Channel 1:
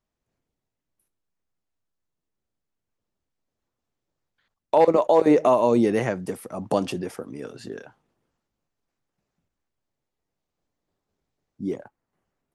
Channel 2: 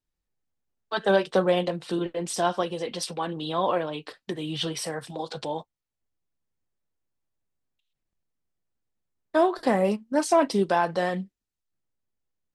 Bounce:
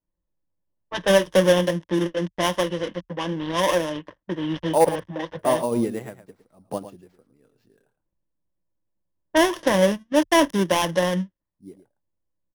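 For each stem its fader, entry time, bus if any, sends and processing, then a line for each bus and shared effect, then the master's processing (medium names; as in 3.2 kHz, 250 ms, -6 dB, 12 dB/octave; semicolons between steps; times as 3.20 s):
+1.5 dB, 0.00 s, muted 4.89–5.39 s, no send, echo send -12.5 dB, bass shelf 97 Hz +11 dB; sample-rate reducer 9.7 kHz, jitter 0%; upward expansion 2.5:1, over -31 dBFS
+2.5 dB, 0.00 s, no send, no echo send, dead-time distortion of 0.28 ms; level-controlled noise filter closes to 920 Hz, open at -22.5 dBFS; rippled EQ curve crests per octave 1.2, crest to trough 10 dB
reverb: none
echo: delay 110 ms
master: none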